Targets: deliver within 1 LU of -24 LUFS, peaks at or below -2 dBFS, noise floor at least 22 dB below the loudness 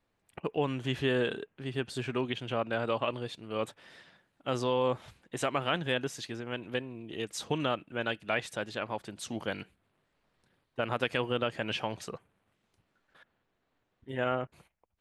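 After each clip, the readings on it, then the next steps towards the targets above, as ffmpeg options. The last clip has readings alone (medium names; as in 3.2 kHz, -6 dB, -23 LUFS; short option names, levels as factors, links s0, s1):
loudness -34.0 LUFS; peak level -14.0 dBFS; loudness target -24.0 LUFS
-> -af "volume=3.16"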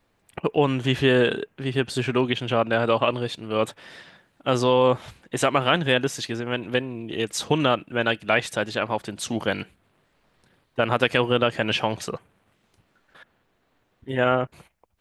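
loudness -24.0 LUFS; peak level -4.0 dBFS; noise floor -69 dBFS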